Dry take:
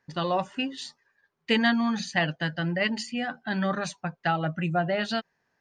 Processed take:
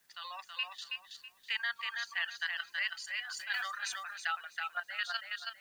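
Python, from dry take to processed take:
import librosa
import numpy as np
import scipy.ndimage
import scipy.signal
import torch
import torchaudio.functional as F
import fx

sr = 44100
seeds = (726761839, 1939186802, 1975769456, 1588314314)

y = scipy.signal.sosfilt(scipy.signal.butter(4, 1300.0, 'highpass', fs=sr, output='sos'), x)
y = fx.dereverb_blind(y, sr, rt60_s=0.84)
y = fx.lowpass(y, sr, hz=2900.0, slope=6, at=(0.67, 2.11))
y = fx.level_steps(y, sr, step_db=11)
y = fx.quant_dither(y, sr, seeds[0], bits=12, dither='triangular')
y = fx.echo_feedback(y, sr, ms=325, feedback_pct=27, wet_db=-4)
y = fx.sustainer(y, sr, db_per_s=38.0, at=(3.3, 4.21), fade=0.02)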